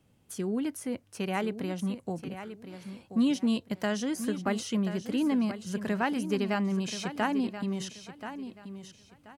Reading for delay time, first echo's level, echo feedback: 1031 ms, -11.0 dB, 26%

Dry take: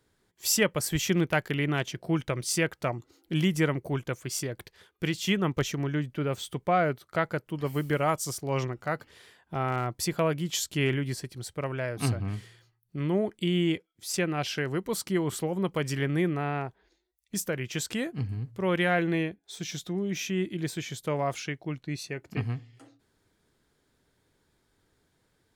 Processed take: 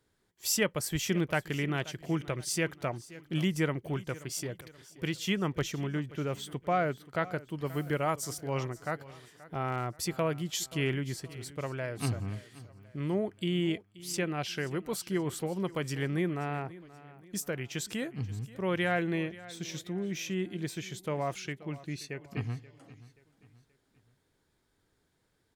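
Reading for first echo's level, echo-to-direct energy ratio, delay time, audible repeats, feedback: -18.5 dB, -17.5 dB, 529 ms, 3, 42%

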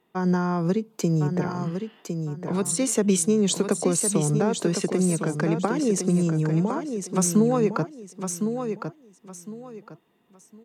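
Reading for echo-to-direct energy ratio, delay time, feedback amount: -6.5 dB, 1058 ms, 26%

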